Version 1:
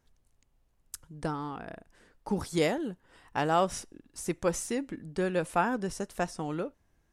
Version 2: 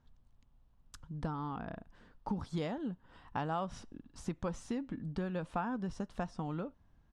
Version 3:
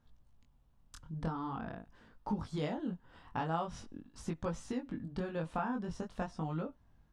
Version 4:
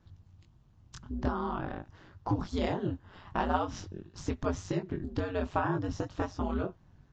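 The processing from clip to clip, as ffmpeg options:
-af "firequalizer=gain_entry='entry(240,0);entry(350,-9);entry(1000,-2);entry(2100,-11);entry(3300,-6);entry(6000,-15);entry(12000,-29)':delay=0.05:min_phase=1,acompressor=threshold=-40dB:ratio=3,volume=4.5dB"
-af "flanger=delay=18.5:depth=6.4:speed=0.45,volume=3.5dB"
-af "aeval=exprs='val(0)*sin(2*PI*92*n/s)':c=same,volume=8.5dB" -ar 16000 -c:a libvorbis -b:a 48k

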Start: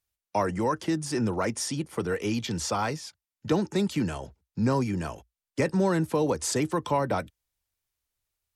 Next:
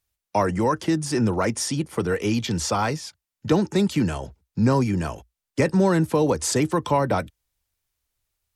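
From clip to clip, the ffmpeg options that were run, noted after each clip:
-af "lowshelf=f=140:g=3.5,volume=4.5dB"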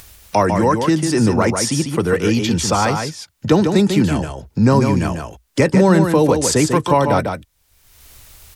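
-af "aecho=1:1:147:0.501,acompressor=mode=upward:threshold=-26dB:ratio=2.5,volume=6dB"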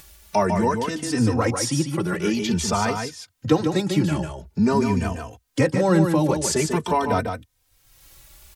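-filter_complex "[0:a]asplit=2[a][b];[b]adelay=3.1,afreqshift=0.48[c];[a][c]amix=inputs=2:normalize=1,volume=-2.5dB"

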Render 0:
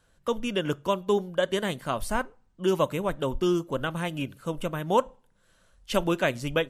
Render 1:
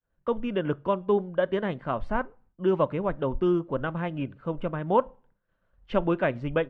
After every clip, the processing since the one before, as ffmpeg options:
-af "lowpass=2.3k,agate=range=-33dB:threshold=-55dB:ratio=3:detection=peak,aemphasis=mode=reproduction:type=75fm"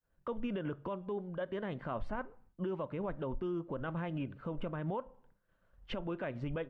-af "acompressor=threshold=-30dB:ratio=10,alimiter=level_in=5dB:limit=-24dB:level=0:latency=1:release=17,volume=-5dB"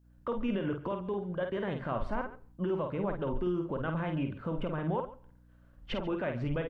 -filter_complex "[0:a]aeval=exprs='val(0)+0.000501*(sin(2*PI*60*n/s)+sin(2*PI*2*60*n/s)/2+sin(2*PI*3*60*n/s)/3+sin(2*PI*4*60*n/s)/4+sin(2*PI*5*60*n/s)/5)':c=same,asplit=2[a][b];[b]aecho=0:1:50|140:0.531|0.15[c];[a][c]amix=inputs=2:normalize=0,volume=4dB"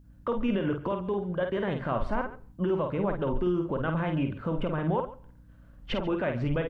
-af "aeval=exprs='val(0)+0.001*(sin(2*PI*50*n/s)+sin(2*PI*2*50*n/s)/2+sin(2*PI*3*50*n/s)/3+sin(2*PI*4*50*n/s)/4+sin(2*PI*5*50*n/s)/5)':c=same,volume=4.5dB"

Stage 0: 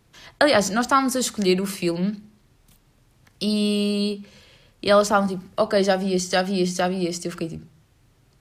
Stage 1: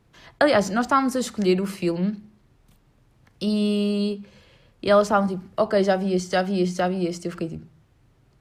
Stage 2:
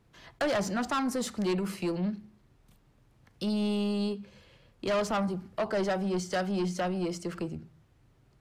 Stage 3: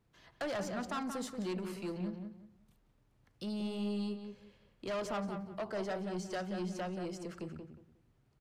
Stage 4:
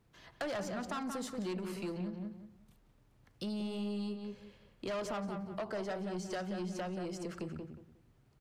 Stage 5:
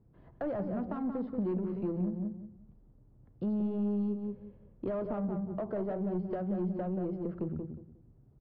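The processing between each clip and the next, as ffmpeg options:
-af "highshelf=f=3k:g=-9.5"
-af "asoftclip=type=tanh:threshold=-20.5dB,volume=-4dB"
-filter_complex "[0:a]asplit=2[a][b];[b]adelay=180,lowpass=f=2.3k:p=1,volume=-6dB,asplit=2[c][d];[d]adelay=180,lowpass=f=2.3k:p=1,volume=0.25,asplit=2[e][f];[f]adelay=180,lowpass=f=2.3k:p=1,volume=0.25[g];[a][c][e][g]amix=inputs=4:normalize=0,volume=-9dB"
-af "acompressor=threshold=-41dB:ratio=3,volume=4dB"
-af "aresample=11025,aresample=44100,adynamicsmooth=sensitivity=0.5:basefreq=530,volume=7.5dB"

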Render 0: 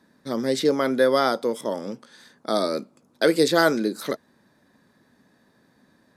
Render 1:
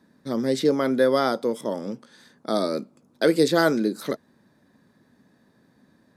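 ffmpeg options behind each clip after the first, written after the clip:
-af "equalizer=f=140:w=0.35:g=5.5,volume=-3dB"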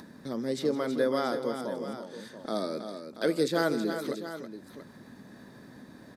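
-filter_complex "[0:a]acompressor=mode=upward:threshold=-26dB:ratio=2.5,asplit=2[a][b];[b]aecho=0:1:161|323|682:0.168|0.376|0.251[c];[a][c]amix=inputs=2:normalize=0,volume=-8dB"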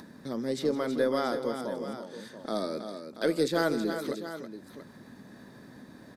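-af "aeval=exprs='0.224*(cos(1*acos(clip(val(0)/0.224,-1,1)))-cos(1*PI/2))+0.00178*(cos(6*acos(clip(val(0)/0.224,-1,1)))-cos(6*PI/2))':c=same"

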